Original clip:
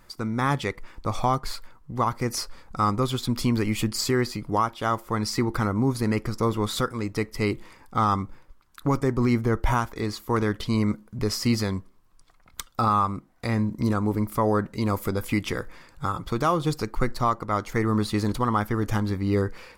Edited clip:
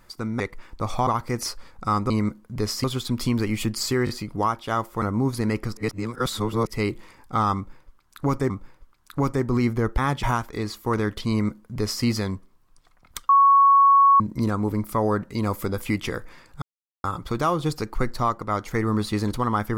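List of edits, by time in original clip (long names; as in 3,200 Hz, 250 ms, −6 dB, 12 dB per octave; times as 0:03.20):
0:00.40–0:00.65: move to 0:09.66
0:01.32–0:01.99: remove
0:04.23: stutter 0.02 s, 3 plays
0:05.16–0:05.64: remove
0:06.39–0:07.29: reverse
0:08.18–0:09.12: repeat, 2 plays
0:10.73–0:11.47: duplicate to 0:03.02
0:12.72–0:13.63: beep over 1,110 Hz −11.5 dBFS
0:16.05: splice in silence 0.42 s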